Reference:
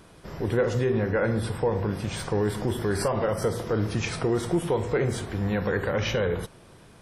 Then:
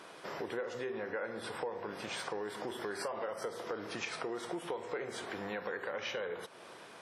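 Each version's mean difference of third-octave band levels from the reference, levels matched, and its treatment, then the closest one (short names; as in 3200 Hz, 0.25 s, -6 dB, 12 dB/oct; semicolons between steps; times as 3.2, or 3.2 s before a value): 6.5 dB: Bessel high-pass 570 Hz, order 2; high shelf 7100 Hz -11.5 dB; compressor 4:1, threshold -44 dBFS, peak gain reduction 17.5 dB; gain +5.5 dB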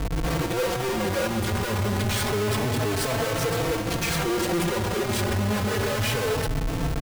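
11.0 dB: in parallel at +1 dB: compressor, threshold -33 dBFS, peak gain reduction 13.5 dB; on the sum: Schmitt trigger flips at -39.5 dBFS; endless flanger 4 ms +0.29 Hz; gain +2 dB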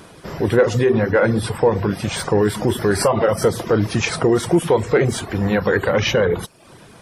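2.0 dB: reverb removal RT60 0.58 s; low shelf 68 Hz -11.5 dB; in parallel at -12 dB: overloaded stage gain 20 dB; on the sum: gain +8.5 dB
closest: third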